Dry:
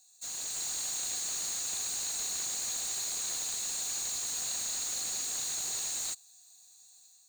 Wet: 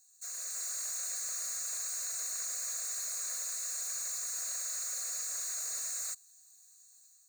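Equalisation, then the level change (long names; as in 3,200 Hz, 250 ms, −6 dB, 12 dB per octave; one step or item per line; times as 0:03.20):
high-pass filter 550 Hz 24 dB per octave
phaser with its sweep stopped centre 860 Hz, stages 6
0.0 dB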